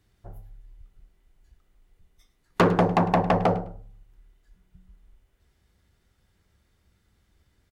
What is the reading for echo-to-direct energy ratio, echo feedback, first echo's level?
-17.0 dB, 20%, -17.0 dB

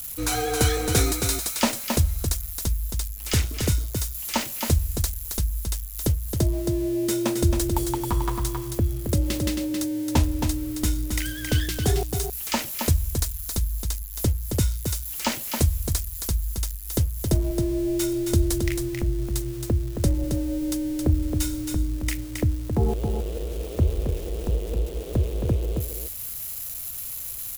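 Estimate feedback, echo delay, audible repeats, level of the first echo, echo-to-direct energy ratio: no steady repeat, 0.27 s, 1, -5.5 dB, -5.5 dB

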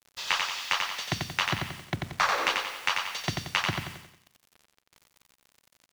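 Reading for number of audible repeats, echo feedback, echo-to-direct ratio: 5, 43%, -3.0 dB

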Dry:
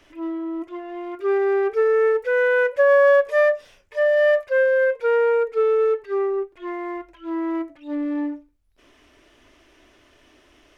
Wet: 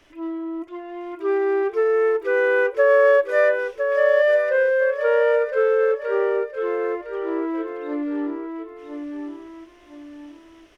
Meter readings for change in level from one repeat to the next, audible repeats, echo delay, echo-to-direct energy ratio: -8.5 dB, 3, 1.009 s, -5.5 dB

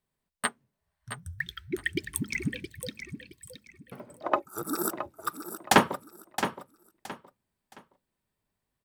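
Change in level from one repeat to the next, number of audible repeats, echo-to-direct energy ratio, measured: -11.5 dB, 3, -9.5 dB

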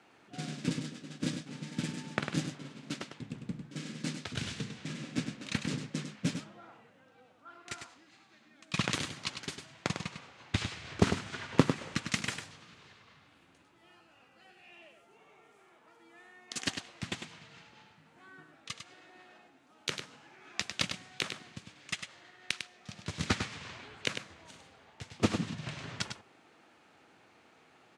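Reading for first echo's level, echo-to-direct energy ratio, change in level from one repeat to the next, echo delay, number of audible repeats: -7.5 dB, -7.5 dB, no steady repeat, 0.101 s, 1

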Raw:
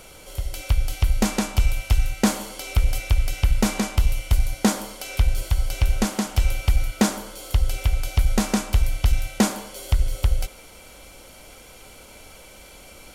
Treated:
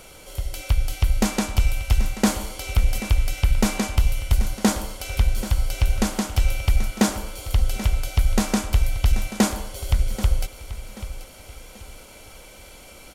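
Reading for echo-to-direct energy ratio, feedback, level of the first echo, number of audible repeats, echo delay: -13.5 dB, 36%, -14.0 dB, 3, 0.784 s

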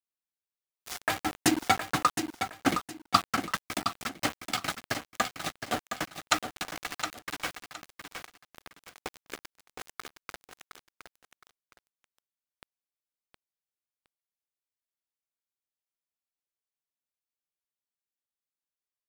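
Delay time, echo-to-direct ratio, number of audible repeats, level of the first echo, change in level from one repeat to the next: 0.715 s, -7.5 dB, 2, -8.0 dB, -11.0 dB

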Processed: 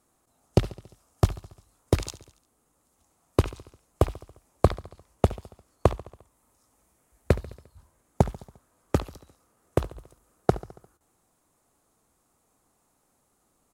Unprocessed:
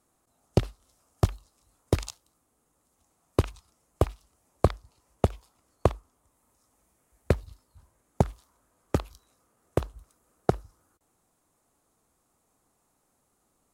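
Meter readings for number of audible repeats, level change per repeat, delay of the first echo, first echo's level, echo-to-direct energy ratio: 4, -4.5 dB, 70 ms, -18.0 dB, -16.0 dB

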